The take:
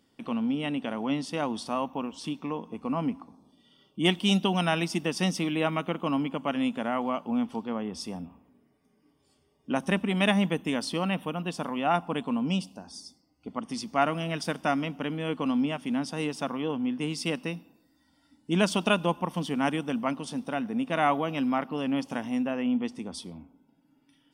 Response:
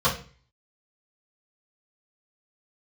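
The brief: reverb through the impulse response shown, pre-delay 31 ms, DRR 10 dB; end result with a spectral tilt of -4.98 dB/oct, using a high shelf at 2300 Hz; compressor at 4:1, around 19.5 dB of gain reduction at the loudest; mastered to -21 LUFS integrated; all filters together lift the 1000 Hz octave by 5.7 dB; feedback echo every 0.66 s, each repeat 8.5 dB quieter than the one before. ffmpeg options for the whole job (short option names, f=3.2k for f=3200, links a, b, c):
-filter_complex "[0:a]equalizer=f=1k:t=o:g=8.5,highshelf=f=2.3k:g=-5,acompressor=threshold=-40dB:ratio=4,aecho=1:1:660|1320|1980|2640:0.376|0.143|0.0543|0.0206,asplit=2[a][b];[1:a]atrim=start_sample=2205,adelay=31[c];[b][c]afir=irnorm=-1:irlink=0,volume=-26dB[d];[a][d]amix=inputs=2:normalize=0,volume=20dB"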